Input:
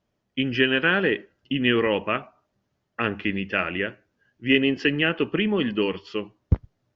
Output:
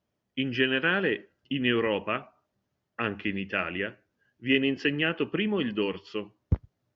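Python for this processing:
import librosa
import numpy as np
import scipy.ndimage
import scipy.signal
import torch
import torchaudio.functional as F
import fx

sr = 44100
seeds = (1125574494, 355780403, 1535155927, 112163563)

y = scipy.signal.sosfilt(scipy.signal.butter(2, 45.0, 'highpass', fs=sr, output='sos'), x)
y = y * librosa.db_to_amplitude(-4.5)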